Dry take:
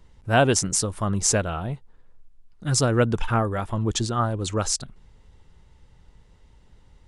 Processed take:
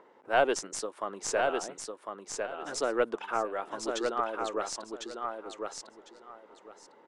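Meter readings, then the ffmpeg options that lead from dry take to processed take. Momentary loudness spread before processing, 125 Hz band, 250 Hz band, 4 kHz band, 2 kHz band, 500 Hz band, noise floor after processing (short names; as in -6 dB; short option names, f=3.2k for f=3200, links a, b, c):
9 LU, -32.0 dB, -12.5 dB, -9.5 dB, -5.0 dB, -4.0 dB, -59 dBFS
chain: -filter_complex "[0:a]highpass=f=350:w=0.5412,highpass=f=350:w=1.3066,aeval=exprs='0.668*(cos(1*acos(clip(val(0)/0.668,-1,1)))-cos(1*PI/2))+0.106*(cos(2*acos(clip(val(0)/0.668,-1,1)))-cos(2*PI/2))':c=same,highshelf=f=3.7k:g=-11.5,acrossover=split=1800[a][b];[a]acompressor=mode=upward:threshold=-42dB:ratio=2.5[c];[c][b]amix=inputs=2:normalize=0,lowpass=9.9k,asplit=2[d][e];[e]aecho=0:1:1052|2104|3156:0.596|0.119|0.0238[f];[d][f]amix=inputs=2:normalize=0,volume=-4.5dB"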